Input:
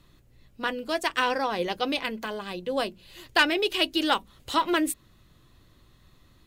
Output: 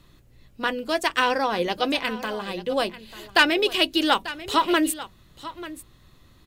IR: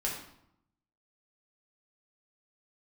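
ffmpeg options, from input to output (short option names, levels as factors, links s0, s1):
-af "aecho=1:1:891:0.168,volume=1.5"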